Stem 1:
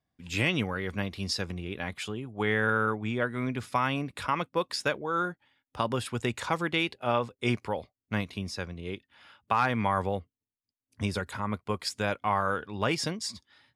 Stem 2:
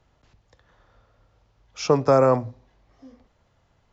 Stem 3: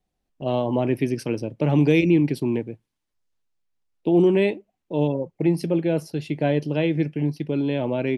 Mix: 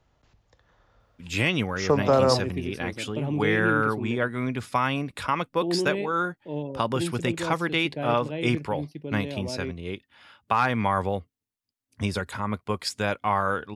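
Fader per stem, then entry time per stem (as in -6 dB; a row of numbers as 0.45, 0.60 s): +3.0, -3.0, -10.0 dB; 1.00, 0.00, 1.55 s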